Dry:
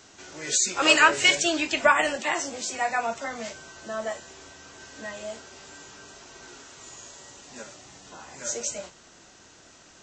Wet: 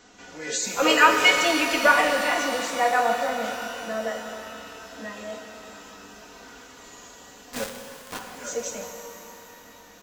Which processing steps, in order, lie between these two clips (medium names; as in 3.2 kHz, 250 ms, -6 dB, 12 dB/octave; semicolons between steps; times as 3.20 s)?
treble shelf 4.1 kHz -9.5 dB; comb 4.1 ms, depth 68%; dynamic bell 530 Hz, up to +6 dB, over -44 dBFS, Q 3.2; 7.53–8.19 s: companded quantiser 2-bit; pitch-shifted reverb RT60 3.2 s, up +12 st, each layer -8 dB, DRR 4 dB